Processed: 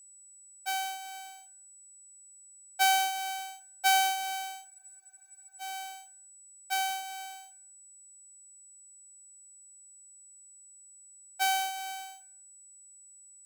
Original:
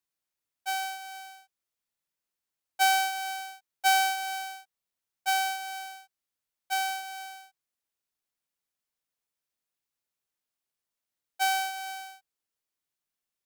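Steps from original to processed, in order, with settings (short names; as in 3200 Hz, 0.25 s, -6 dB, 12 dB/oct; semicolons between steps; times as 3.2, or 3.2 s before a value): FDN reverb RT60 0.6 s, low-frequency decay 1.3×, high-frequency decay 0.75×, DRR 9.5 dB; whine 7900 Hz -52 dBFS; spectral freeze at 4.71, 0.90 s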